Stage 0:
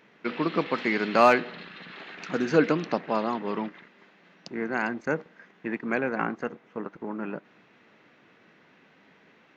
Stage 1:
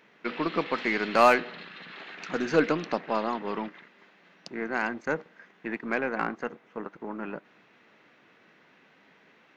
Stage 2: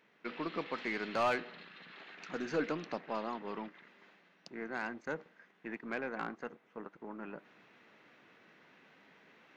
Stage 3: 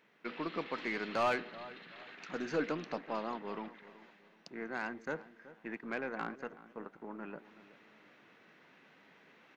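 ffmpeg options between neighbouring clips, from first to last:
-af "aeval=exprs='0.473*(cos(1*acos(clip(val(0)/0.473,-1,1)))-cos(1*PI/2))+0.0133*(cos(6*acos(clip(val(0)/0.473,-1,1)))-cos(6*PI/2))+0.0188*(cos(8*acos(clip(val(0)/0.473,-1,1)))-cos(8*PI/2))':c=same,lowshelf=f=350:g=-5"
-af "asoftclip=type=tanh:threshold=-14.5dB,areverse,acompressor=mode=upward:threshold=-45dB:ratio=2.5,areverse,volume=-9dB"
-filter_complex "[0:a]asplit=2[a][b];[b]adelay=376,lowpass=f=1.6k:p=1,volume=-16dB,asplit=2[c][d];[d]adelay=376,lowpass=f=1.6k:p=1,volume=0.35,asplit=2[e][f];[f]adelay=376,lowpass=f=1.6k:p=1,volume=0.35[g];[a][c][e][g]amix=inputs=4:normalize=0"

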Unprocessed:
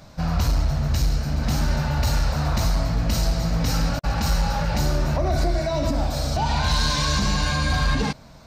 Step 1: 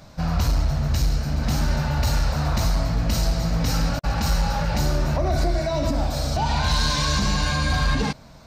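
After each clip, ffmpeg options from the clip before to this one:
-af anull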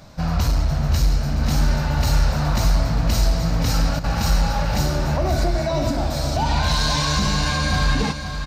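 -af "aecho=1:1:522|1044|1566|2088:0.355|0.142|0.0568|0.0227,volume=1.5dB"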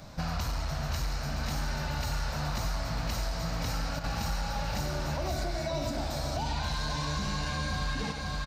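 -filter_complex "[0:a]asplit=2[a][b];[b]adelay=90,highpass=300,lowpass=3.4k,asoftclip=type=hard:threshold=-19dB,volume=-7dB[c];[a][c]amix=inputs=2:normalize=0,acrossover=split=680|2400[d][e][f];[d]acompressor=threshold=-30dB:ratio=4[g];[e]acompressor=threshold=-37dB:ratio=4[h];[f]acompressor=threshold=-39dB:ratio=4[i];[g][h][i]amix=inputs=3:normalize=0,volume=-2.5dB"

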